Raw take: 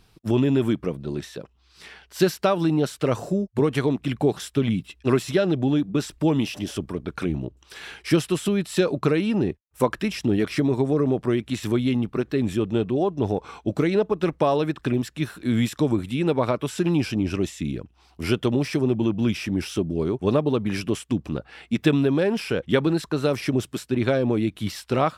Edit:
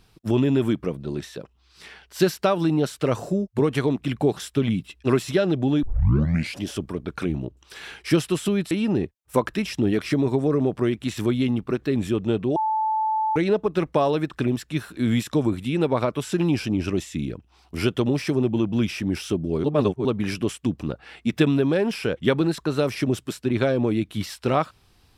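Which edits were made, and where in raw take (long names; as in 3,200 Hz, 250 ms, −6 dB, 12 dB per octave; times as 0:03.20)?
0:05.83: tape start 0.78 s
0:08.71–0:09.17: remove
0:13.02–0:13.82: beep over 873 Hz −20 dBFS
0:20.10–0:20.51: reverse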